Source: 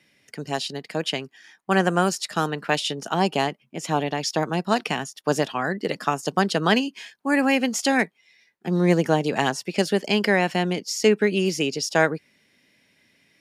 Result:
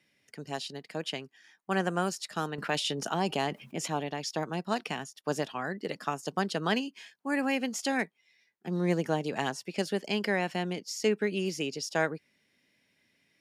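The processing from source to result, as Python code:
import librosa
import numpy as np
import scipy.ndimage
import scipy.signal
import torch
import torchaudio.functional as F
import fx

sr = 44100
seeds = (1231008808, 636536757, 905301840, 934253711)

y = fx.env_flatten(x, sr, amount_pct=50, at=(2.58, 3.88))
y = y * 10.0 ** (-9.0 / 20.0)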